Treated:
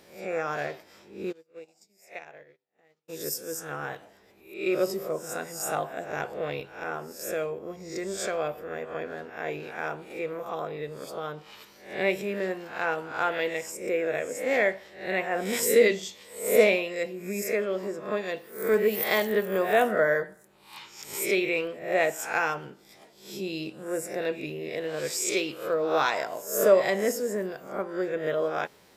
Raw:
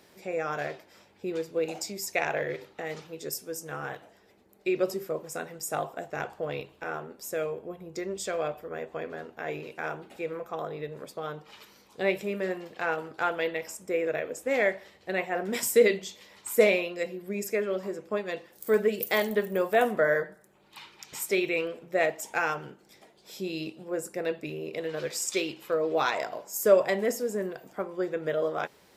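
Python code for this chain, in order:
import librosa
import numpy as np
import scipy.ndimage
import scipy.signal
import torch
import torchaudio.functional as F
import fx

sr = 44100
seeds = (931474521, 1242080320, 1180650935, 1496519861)

y = fx.spec_swells(x, sr, rise_s=0.48)
y = fx.upward_expand(y, sr, threshold_db=-43.0, expansion=2.5, at=(1.31, 3.08), fade=0.02)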